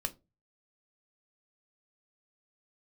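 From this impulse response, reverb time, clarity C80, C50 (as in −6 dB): 0.25 s, 28.5 dB, 21.5 dB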